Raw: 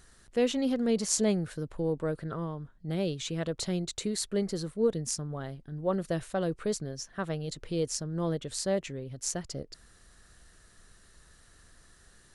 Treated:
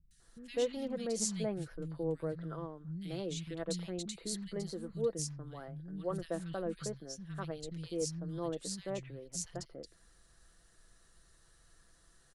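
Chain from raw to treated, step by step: comb 6 ms, depth 37%; three bands offset in time lows, highs, mids 110/200 ms, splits 200/2100 Hz; trim -7 dB

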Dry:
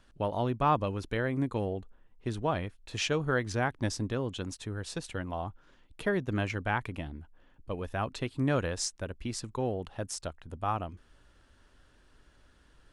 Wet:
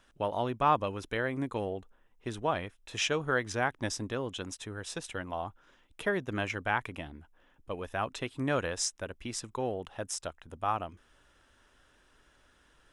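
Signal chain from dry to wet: bass shelf 300 Hz -9.5 dB; band-stop 4.4 kHz, Q 6.9; trim +2 dB

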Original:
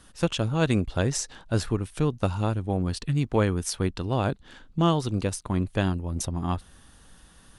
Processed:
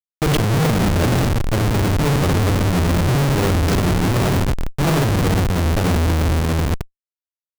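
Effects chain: sawtooth pitch modulation -2 st, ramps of 285 ms; spectral gate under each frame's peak -30 dB strong; on a send: bucket-brigade echo 322 ms, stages 1024, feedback 60%, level -18 dB; on the sum: one-sided clip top -20.5 dBFS; bass shelf 410 Hz +8 dB; in parallel at 0 dB: level held to a coarse grid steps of 15 dB; on the sum: low-pass 5 kHz 12 dB/octave; hum notches 50/100/150/200/250/300 Hz; reverse bouncing-ball echo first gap 50 ms, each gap 1.25×, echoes 5; Schmitt trigger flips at -24.5 dBFS; peak limiter -23 dBFS, peak gain reduction 9.5 dB; trim +8.5 dB

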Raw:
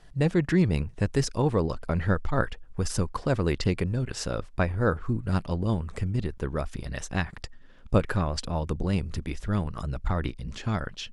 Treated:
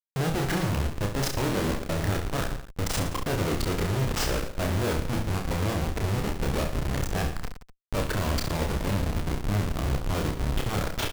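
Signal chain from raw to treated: Schmitt trigger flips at -33.5 dBFS; reverse bouncing-ball echo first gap 30 ms, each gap 1.25×, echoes 5

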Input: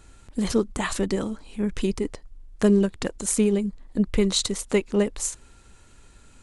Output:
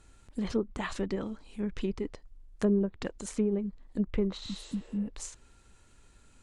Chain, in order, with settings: spectral replace 4.44–5.06 s, 320–8800 Hz both; low-pass that closes with the level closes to 940 Hz, closed at -16 dBFS; trim -7.5 dB

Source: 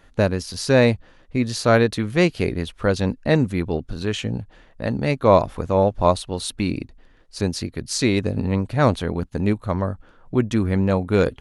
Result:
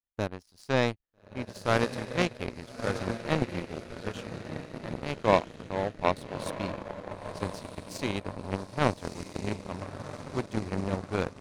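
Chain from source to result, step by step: echo that smears into a reverb 1286 ms, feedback 56%, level -3 dB; power-law waveshaper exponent 2; trim -3.5 dB

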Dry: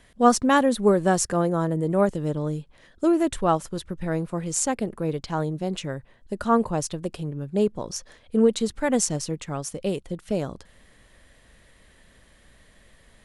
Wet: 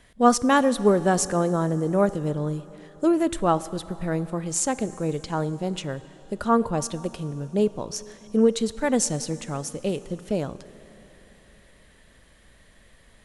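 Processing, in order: plate-style reverb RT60 3.7 s, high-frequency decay 0.9×, DRR 15.5 dB

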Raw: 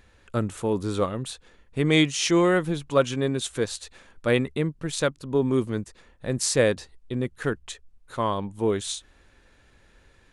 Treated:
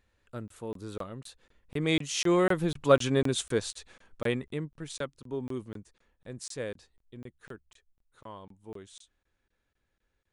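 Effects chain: Doppler pass-by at 3.07 s, 8 m/s, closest 4.5 m; crackling interface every 0.25 s, samples 1024, zero, from 0.48 s

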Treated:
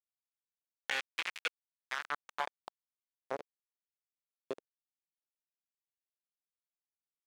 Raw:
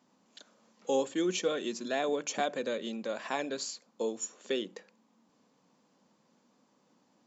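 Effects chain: on a send at -16 dB: reverberation RT60 2.0 s, pre-delay 111 ms; on the sum: hum 60 Hz, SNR 23 dB; bit crusher 4-bit; band-pass sweep 2.4 kHz -> 450 Hz, 1.41–3.52 s; compression 2:1, threshold -41 dBFS, peak gain reduction 5.5 dB; trim +7 dB

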